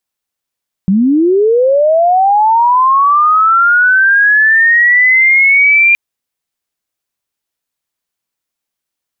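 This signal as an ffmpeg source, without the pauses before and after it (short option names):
-f lavfi -i "aevalsrc='pow(10,(-6.5+2*t/5.07)/20)*sin(2*PI*(180*t+2220*t*t/(2*5.07)))':d=5.07:s=44100"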